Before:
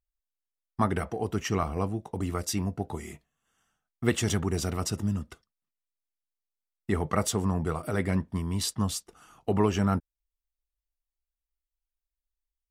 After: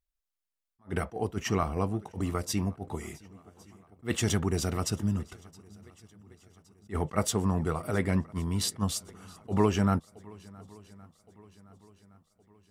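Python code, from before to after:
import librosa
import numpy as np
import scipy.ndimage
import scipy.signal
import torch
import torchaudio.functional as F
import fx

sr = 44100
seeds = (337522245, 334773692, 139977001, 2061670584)

y = fx.echo_swing(x, sr, ms=1117, ratio=1.5, feedback_pct=45, wet_db=-24.0)
y = fx.attack_slew(y, sr, db_per_s=350.0)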